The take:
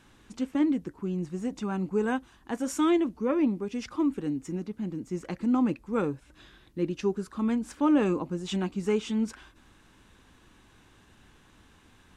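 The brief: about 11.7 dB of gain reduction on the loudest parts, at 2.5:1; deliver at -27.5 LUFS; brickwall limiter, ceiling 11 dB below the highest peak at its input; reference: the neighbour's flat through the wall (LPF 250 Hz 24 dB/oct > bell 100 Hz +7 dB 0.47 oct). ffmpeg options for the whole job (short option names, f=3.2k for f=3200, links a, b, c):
-af "acompressor=threshold=-38dB:ratio=2.5,alimiter=level_in=13dB:limit=-24dB:level=0:latency=1,volume=-13dB,lowpass=f=250:w=0.5412,lowpass=f=250:w=1.3066,equalizer=f=100:t=o:w=0.47:g=7,volume=21.5dB"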